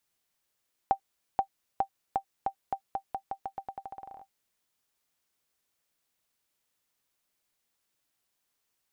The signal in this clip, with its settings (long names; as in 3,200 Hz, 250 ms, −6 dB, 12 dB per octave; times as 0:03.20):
bouncing ball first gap 0.48 s, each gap 0.86, 782 Hz, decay 87 ms −13.5 dBFS